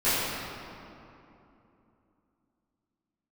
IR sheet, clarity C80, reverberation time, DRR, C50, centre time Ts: -2.0 dB, 2.9 s, -17.5 dB, -4.0 dB, 0.172 s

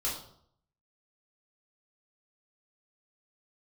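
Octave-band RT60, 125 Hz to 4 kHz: 0.85, 0.70, 0.65, 0.65, 0.45, 0.50 s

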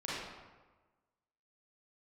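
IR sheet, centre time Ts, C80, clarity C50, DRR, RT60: 0.1 s, 0.5 dB, -3.5 dB, -9.0 dB, 1.3 s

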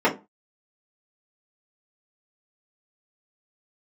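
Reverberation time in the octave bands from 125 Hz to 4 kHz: 0.30, 0.30, 0.25, 0.30, 0.20, 0.15 s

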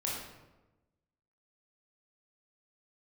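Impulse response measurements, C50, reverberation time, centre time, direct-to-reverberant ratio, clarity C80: 0.5 dB, 1.1 s, 64 ms, -5.0 dB, 4.0 dB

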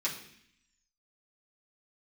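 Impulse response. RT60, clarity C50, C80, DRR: 0.65 s, 8.0 dB, 11.0 dB, -7.0 dB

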